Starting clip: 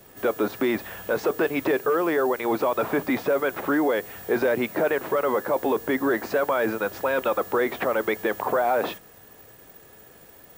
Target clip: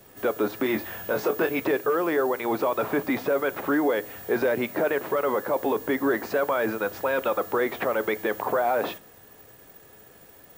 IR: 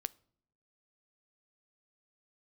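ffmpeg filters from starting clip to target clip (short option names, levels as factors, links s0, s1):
-filter_complex "[0:a]asettb=1/sr,asplit=3[s0][s1][s2];[s0]atrim=end=0.634[s3];[s1]atrim=start=0.63:end=1.6,asetpts=PTS-STARTPTS,afade=t=in:d=0.004:c=qsin,afade=t=out:st=0.966:d=0.004:c=qsin,asplit=2[s4][s5];[s5]adelay=23,volume=0.531[s6];[s4][s6]amix=inputs=2:normalize=0,atrim=end_sample=42777[s7];[s2]atrim=start=1.596[s8];[s3][s7]acrossfade=d=0.004:c1=hsin:c2=qsin[s9];[s9][s8]acrossfade=d=0.004:c1=qsin:c2=hsin[s10];[1:a]atrim=start_sample=2205[s11];[s10][s11]afir=irnorm=-1:irlink=0"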